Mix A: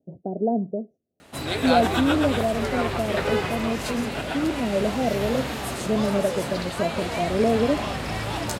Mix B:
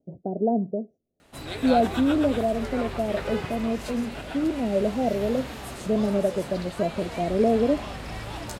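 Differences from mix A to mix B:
background −7.5 dB
master: remove high-pass filter 71 Hz

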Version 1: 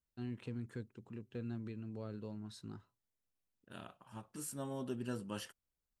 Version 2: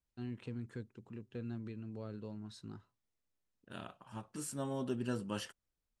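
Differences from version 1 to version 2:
second voice +3.5 dB
master: add low-pass filter 9,200 Hz 12 dB per octave

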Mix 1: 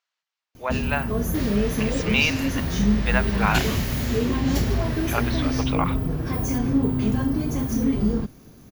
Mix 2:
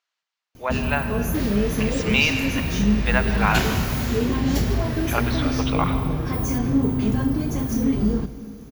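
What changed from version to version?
reverb: on, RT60 2.6 s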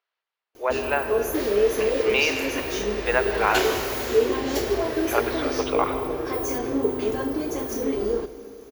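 speech: add high-frequency loss of the air 210 metres
master: add low shelf with overshoot 270 Hz −13 dB, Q 3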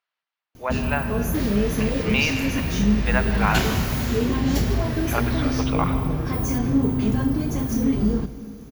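master: add low shelf with overshoot 270 Hz +13 dB, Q 3

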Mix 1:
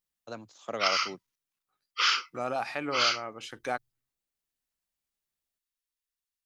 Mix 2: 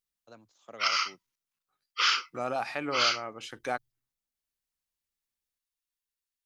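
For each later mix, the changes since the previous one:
first voice −11.5 dB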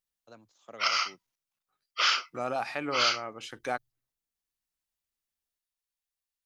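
background: remove Butterworth band-reject 670 Hz, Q 1.7

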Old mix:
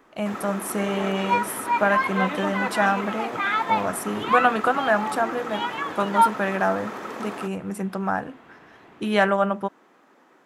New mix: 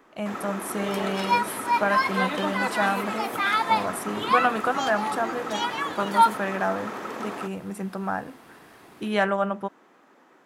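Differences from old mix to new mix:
speech −3.5 dB
second sound: remove low-pass filter 3,300 Hz 24 dB per octave

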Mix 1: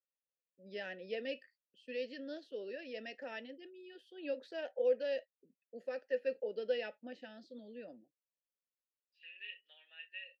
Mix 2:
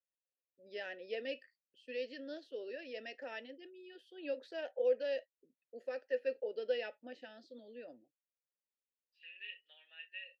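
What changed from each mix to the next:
master: add parametric band 190 Hz −14 dB 0.4 octaves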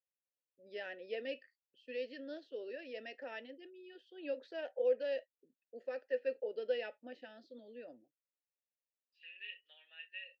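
first voice: add high-frequency loss of the air 100 metres

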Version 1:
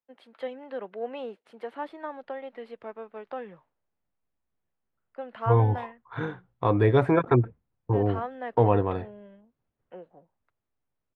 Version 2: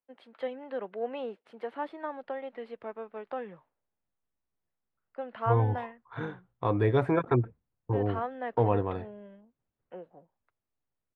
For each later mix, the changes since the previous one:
first voice: add high-shelf EQ 7,400 Hz −11 dB
second voice −4.5 dB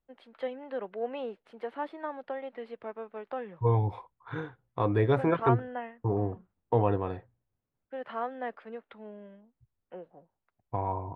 second voice: entry −1.85 s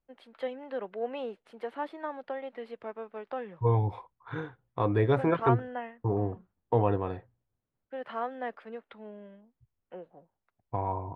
first voice: add high-shelf EQ 7,400 Hz +11 dB

